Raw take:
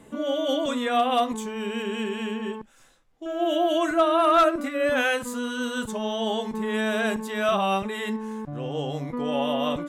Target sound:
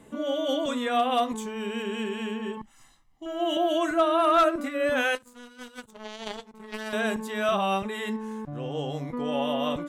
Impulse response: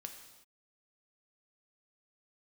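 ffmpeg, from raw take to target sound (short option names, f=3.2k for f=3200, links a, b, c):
-filter_complex "[0:a]asettb=1/sr,asplit=3[a][b][c];[a]atrim=end=2.574[d];[b]atrim=start=2.57:end=3.57,asetpts=PTS-STARTPTS,afade=t=in:d=0.004:c=qsin,afade=t=out:st=0.996:d=0.004:c=qsin,aecho=1:1:1:0.76,atrim=end_sample=44100[e];[c]atrim=start=3.566[f];[d][e]acrossfade=d=0.004:c1=hsin:c2=qsin[g];[g][f]acrossfade=d=0.004:c1=qsin:c2=hsin,asettb=1/sr,asplit=3[h][i][j];[h]atrim=end=5.154[k];[i]atrim=start=5.15:end=6.93,asetpts=PTS-STARTPTS,afade=t=in:d=0.004:c=qsin,afade=t=out:st=1.776:d=0.004:c=qsin,aeval=exprs='0.188*(cos(1*acos(clip(val(0)/0.188,-1,1)))-cos(1*PI/2))+0.0596*(cos(3*acos(clip(val(0)/0.188,-1,1)))-cos(3*PI/2))':c=same[l];[j]atrim=start=6.926[m];[k][l]acrossfade=d=0.004:c1=hsin:c2=qsin[n];[n][m]acrossfade=d=0.004:c1=qsin:c2=hsin,volume=-2dB"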